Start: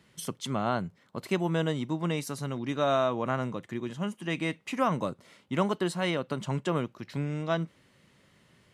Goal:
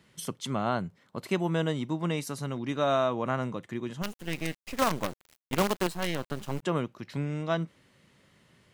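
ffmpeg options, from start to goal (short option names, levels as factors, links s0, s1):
-filter_complex "[0:a]asplit=3[s0][s1][s2];[s0]afade=t=out:st=4.01:d=0.02[s3];[s1]acrusher=bits=5:dc=4:mix=0:aa=0.000001,afade=t=in:st=4.01:d=0.02,afade=t=out:st=6.62:d=0.02[s4];[s2]afade=t=in:st=6.62:d=0.02[s5];[s3][s4][s5]amix=inputs=3:normalize=0"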